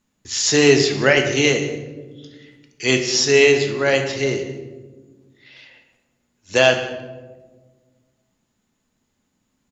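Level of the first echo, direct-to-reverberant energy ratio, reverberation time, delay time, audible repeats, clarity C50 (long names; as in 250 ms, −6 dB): −18.0 dB, 4.0 dB, 1.4 s, 182 ms, 1, 7.5 dB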